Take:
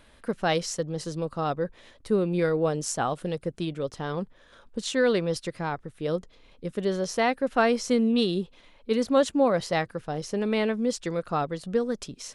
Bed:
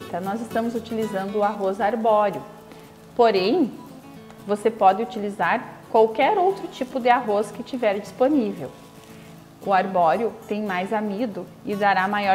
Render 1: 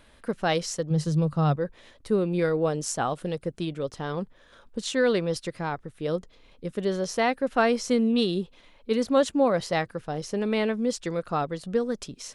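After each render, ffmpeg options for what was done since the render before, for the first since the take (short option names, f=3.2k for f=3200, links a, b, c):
-filter_complex "[0:a]asettb=1/sr,asplit=3[a][b][c];[a]atrim=end=0.904[d];[b]atrim=start=0.9:end=1.56,asetpts=PTS-STARTPTS,afade=t=in:d=0.004:c=qsin,afade=t=out:st=0.656:d=0.004:c=qsin,equalizer=f=150:w=2.8:g=14[e];[c]atrim=start=1.556[f];[d][e]acrossfade=d=0.004:c1=hsin:c2=qsin[g];[g][f]acrossfade=d=0.004:c1=qsin:c2=hsin"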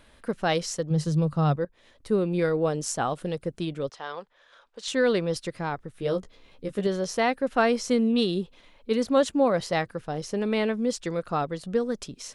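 -filter_complex "[0:a]asettb=1/sr,asplit=3[a][b][c];[a]atrim=end=3.894[d];[b]atrim=start=3.89:end=4.88,asetpts=PTS-STARTPTS,afade=t=in:d=0.004:c=qsin,afade=t=out:st=0.986:d=0.004:c=qsin,acrossover=split=510 7200:gain=0.0794 1 0.158[e][f][g];[e][f][g]amix=inputs=3:normalize=0[h];[c]atrim=start=4.876[i];[d][h]acrossfade=d=0.004:c1=hsin:c2=qsin[j];[j][i]acrossfade=d=0.004:c1=qsin:c2=hsin,asettb=1/sr,asplit=3[k][l][m];[k]atrim=end=5.924[n];[l]atrim=start=5.92:end=6.87,asetpts=PTS-STARTPTS,afade=t=in:d=0.004:c=qsin,afade=t=out:st=0.946:d=0.004:c=qsin,asplit=2[o][p];[p]adelay=15,volume=-4dB[q];[o][q]amix=inputs=2:normalize=0,atrim=end_sample=41895[r];[m]atrim=start=6.866[s];[n][r]acrossfade=d=0.004:c1=hsin:c2=qsin[t];[t][s]acrossfade=d=0.004:c1=qsin:c2=hsin,asplit=2[u][v];[u]atrim=end=1.65,asetpts=PTS-STARTPTS,afade=t=out:st=1.646:d=0.004:c=hsin:silence=0.16788[w];[v]atrim=start=1.65,asetpts=PTS-STARTPTS,afade=t=in:d=0.49:silence=0.16788[x];[w][x]concat=n=2:v=0:a=1"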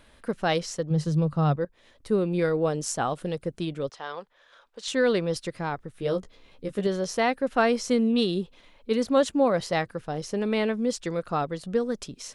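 -filter_complex "[0:a]asettb=1/sr,asplit=3[a][b][c];[a]atrim=end=0.594[d];[b]atrim=start=0.59:end=1.61,asetpts=PTS-STARTPTS,afade=t=in:d=0.004:c=qsin,afade=t=out:st=1.016:d=0.004:c=qsin,highshelf=f=5.7k:g=-6[e];[c]atrim=start=1.606[f];[d][e]acrossfade=d=0.004:c1=hsin:c2=qsin[g];[g][f]acrossfade=d=0.004:c1=qsin:c2=hsin"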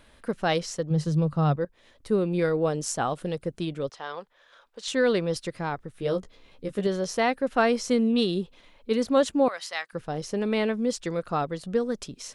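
-filter_complex "[0:a]asettb=1/sr,asplit=3[a][b][c];[a]atrim=end=9.484[d];[b]atrim=start=9.48:end=9.93,asetpts=PTS-STARTPTS,afade=t=in:d=0.004:c=qsin,afade=t=out:st=0.446:d=0.004:c=qsin,highpass=1.3k[e];[c]atrim=start=9.926[f];[d][e]acrossfade=d=0.004:c1=hsin:c2=qsin[g];[g][f]acrossfade=d=0.004:c1=qsin:c2=hsin"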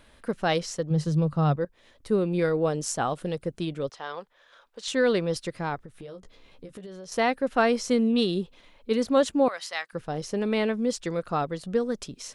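-filter_complex "[0:a]asettb=1/sr,asplit=3[a][b][c];[a]atrim=end=5.804[d];[b]atrim=start=5.8:end=7.12,asetpts=PTS-STARTPTS,afade=t=in:d=0.004:c=qsin,afade=t=out:st=1.316:d=0.004:c=qsin,acompressor=threshold=-38dB:ratio=10:attack=3.2:release=140:knee=1:detection=peak[e];[c]atrim=start=7.116[f];[d][e]acrossfade=d=0.004:c1=hsin:c2=qsin[g];[g][f]acrossfade=d=0.004:c1=qsin:c2=hsin"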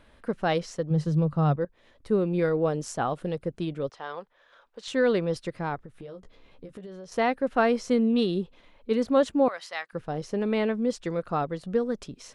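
-af "highshelf=f=3.7k:g=-10"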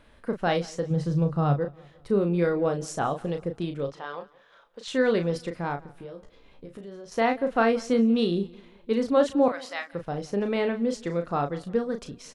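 -filter_complex "[0:a]asplit=2[a][b];[b]adelay=35,volume=-7dB[c];[a][c]amix=inputs=2:normalize=0,aecho=1:1:173|346|519:0.0708|0.0304|0.0131"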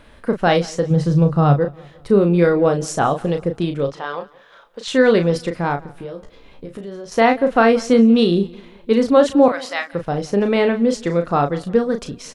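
-af "volume=9.5dB,alimiter=limit=-3dB:level=0:latency=1"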